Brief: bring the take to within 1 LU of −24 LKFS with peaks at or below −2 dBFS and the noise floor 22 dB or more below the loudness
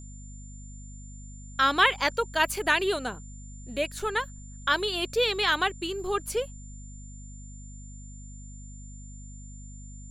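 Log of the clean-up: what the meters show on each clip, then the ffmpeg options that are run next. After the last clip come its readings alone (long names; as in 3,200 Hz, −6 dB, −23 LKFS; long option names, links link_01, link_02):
mains hum 50 Hz; hum harmonics up to 250 Hz; level of the hum −41 dBFS; interfering tone 7,200 Hz; level of the tone −50 dBFS; integrated loudness −26.5 LKFS; sample peak −8.0 dBFS; target loudness −24.0 LKFS
→ -af "bandreject=frequency=50:width_type=h:width=6,bandreject=frequency=100:width_type=h:width=6,bandreject=frequency=150:width_type=h:width=6,bandreject=frequency=200:width_type=h:width=6,bandreject=frequency=250:width_type=h:width=6"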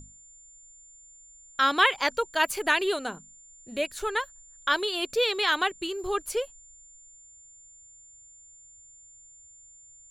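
mains hum none found; interfering tone 7,200 Hz; level of the tone −50 dBFS
→ -af "bandreject=frequency=7200:width=30"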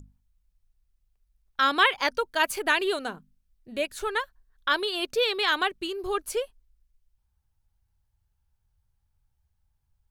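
interfering tone none found; integrated loudness −26.0 LKFS; sample peak −7.5 dBFS; target loudness −24.0 LKFS
→ -af "volume=2dB"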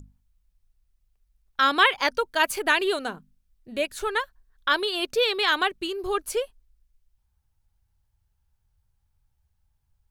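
integrated loudness −24.0 LKFS; sample peak −5.5 dBFS; background noise floor −73 dBFS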